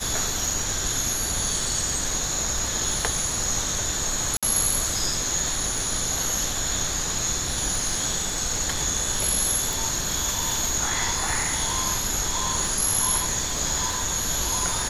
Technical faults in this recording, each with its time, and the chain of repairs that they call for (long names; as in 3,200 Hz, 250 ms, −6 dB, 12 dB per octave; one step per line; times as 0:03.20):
surface crackle 24 per second −32 dBFS
0:04.37–0:04.43: drop-out 56 ms
0:09.73: click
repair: click removal
repair the gap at 0:04.37, 56 ms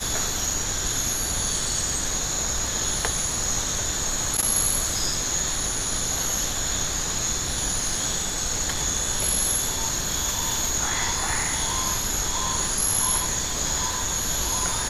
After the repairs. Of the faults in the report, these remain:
none of them is left